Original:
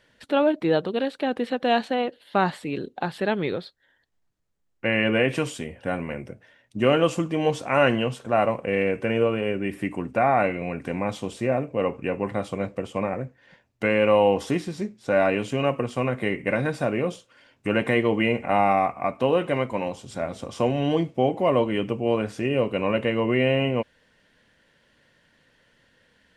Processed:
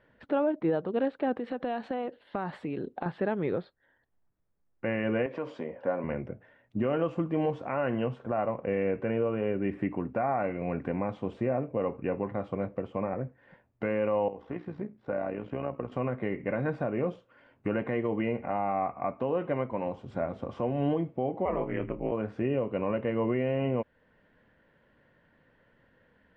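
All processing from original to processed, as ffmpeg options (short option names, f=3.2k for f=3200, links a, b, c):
-filter_complex "[0:a]asettb=1/sr,asplit=3[a][b][c];[a]atrim=end=1.364[d];[b]atrim=start=1.36:end=3.06,asetpts=PTS-STARTPTS,afade=t=in:d=0.004:c=qsin,afade=t=out:st=1.696:d=0.004:c=qsin,aemphasis=mode=production:type=50kf,acompressor=threshold=-29dB:ratio=4:attack=3.2:release=140:knee=1:detection=peak[e];[c]atrim=start=3.056[f];[d][e]acrossfade=d=0.004:c1=hsin:c2=qsin[g];[g][f]acrossfade=d=0.004:c1=qsin:c2=hsin,asettb=1/sr,asplit=3[h][i][j];[h]atrim=end=5.264[k];[i]atrim=start=5.26:end=6.04,asetpts=PTS-STARTPTS,afade=t=in:d=0.004:c=qsin,afade=t=out:st=0.776:d=0.004:c=qsin,acompressor=threshold=-30dB:ratio=2:attack=3.2:release=140:knee=1:detection=peak,highpass=220,equalizer=f=550:t=q:w=4:g=8,equalizer=f=1k:t=q:w=4:g=6,equalizer=f=2.8k:t=q:w=4:g=-4,equalizer=f=4.8k:t=q:w=4:g=6,lowpass=f=7.2k:w=0.5412,lowpass=f=7.2k:w=1.3066[l];[j]atrim=start=6.036[m];[k][l]acrossfade=d=0.004:c1=hsin:c2=qsin[n];[n][m]acrossfade=d=0.004:c1=qsin:c2=hsin,asettb=1/sr,asplit=3[o][p][q];[o]atrim=end=14.284[r];[p]atrim=start=14.28:end=15.92,asetpts=PTS-STARTPTS,afade=t=in:d=0.004:c=qsin,afade=t=out:st=1.636:d=0.004:c=qsin,aemphasis=mode=reproduction:type=75fm,acrossover=split=570|3900[s][t][u];[s]acompressor=threshold=-32dB:ratio=4[v];[t]acompressor=threshold=-34dB:ratio=4[w];[u]acompressor=threshold=-56dB:ratio=4[x];[v][w][x]amix=inputs=3:normalize=0,tremolo=f=60:d=0.621[y];[q]atrim=start=15.916[z];[r][y]acrossfade=d=0.004:c1=hsin:c2=qsin[aa];[aa][z]acrossfade=d=0.004:c1=qsin:c2=hsin,asettb=1/sr,asplit=3[ab][ac][ad];[ab]atrim=end=21.454[ae];[ac]atrim=start=21.45:end=22.12,asetpts=PTS-STARTPTS,afade=t=in:d=0.004:c=qsin,afade=t=out:st=0.666:d=0.004:c=qsin,lowpass=f=2.1k:t=q:w=2.3,aeval=exprs='val(0)*sin(2*PI*86*n/s)':c=same,asplit=2[af][ag];[ag]adelay=26,volume=-12dB[ah];[af][ah]amix=inputs=2:normalize=0,atrim=end_sample=29547[ai];[ad]atrim=start=22.116[aj];[ae][ai]acrossfade=d=0.004:c1=hsin:c2=qsin[ak];[ak][aj]acrossfade=d=0.004:c1=qsin:c2=hsin,lowpass=1.5k,alimiter=limit=-18.5dB:level=0:latency=1:release=370"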